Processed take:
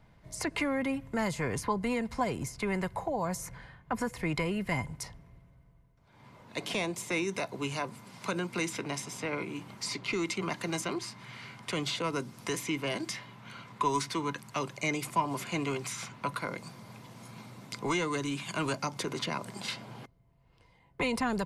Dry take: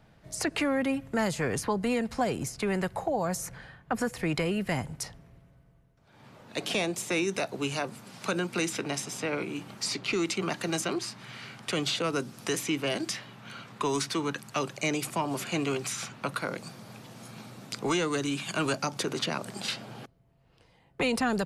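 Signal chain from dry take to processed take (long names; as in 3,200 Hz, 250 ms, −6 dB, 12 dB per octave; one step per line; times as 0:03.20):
low-shelf EQ 110 Hz +8 dB
hollow resonant body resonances 1,000/2,100 Hz, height 13 dB, ringing for 55 ms
level −4.5 dB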